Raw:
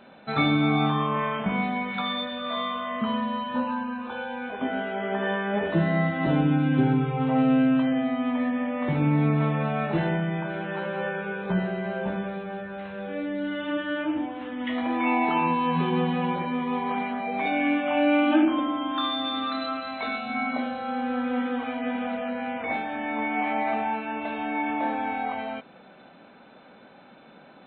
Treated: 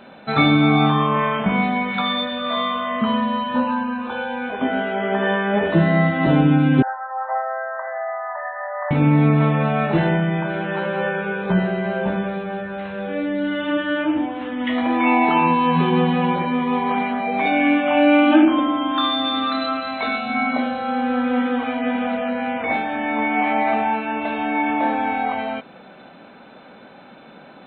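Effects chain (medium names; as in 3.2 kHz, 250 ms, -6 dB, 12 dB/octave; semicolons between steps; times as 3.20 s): 6.82–8.91 s: brick-wall FIR band-pass 530–2000 Hz; trim +7 dB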